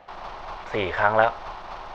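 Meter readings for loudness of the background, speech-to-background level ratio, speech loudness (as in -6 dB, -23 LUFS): -37.5 LUFS, 14.5 dB, -23.0 LUFS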